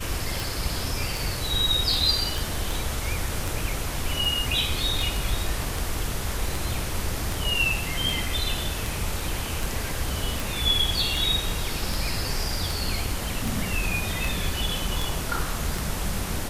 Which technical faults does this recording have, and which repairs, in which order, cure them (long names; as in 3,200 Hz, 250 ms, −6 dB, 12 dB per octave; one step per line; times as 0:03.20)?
scratch tick 78 rpm
0:02.38: click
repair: click removal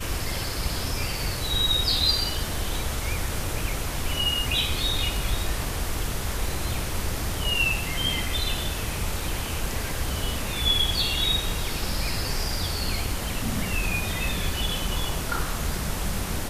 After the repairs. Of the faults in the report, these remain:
0:02.38: click